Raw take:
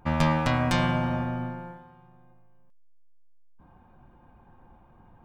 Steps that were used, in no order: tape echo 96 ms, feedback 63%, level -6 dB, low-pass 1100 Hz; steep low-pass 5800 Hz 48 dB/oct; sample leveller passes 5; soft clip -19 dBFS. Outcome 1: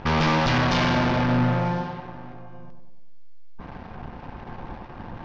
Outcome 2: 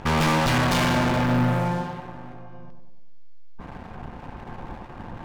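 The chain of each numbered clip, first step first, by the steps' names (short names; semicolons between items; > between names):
soft clip > sample leveller > steep low-pass > tape echo; steep low-pass > soft clip > sample leveller > tape echo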